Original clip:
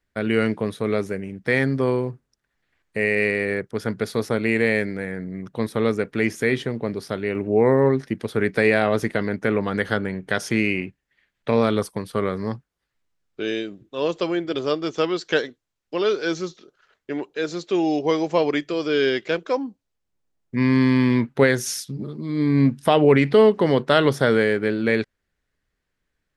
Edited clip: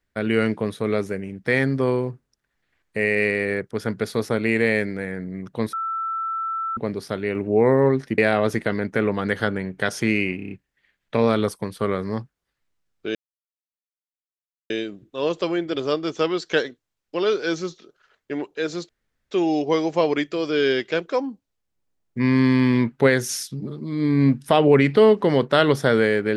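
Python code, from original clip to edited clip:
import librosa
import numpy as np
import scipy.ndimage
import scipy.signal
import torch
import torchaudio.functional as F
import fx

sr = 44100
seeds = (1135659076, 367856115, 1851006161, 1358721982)

y = fx.edit(x, sr, fx.bleep(start_s=5.73, length_s=1.04, hz=1330.0, db=-23.5),
    fx.cut(start_s=8.18, length_s=0.49),
    fx.stutter(start_s=10.85, slice_s=0.03, count=6),
    fx.insert_silence(at_s=13.49, length_s=1.55),
    fx.insert_room_tone(at_s=17.68, length_s=0.42), tone=tone)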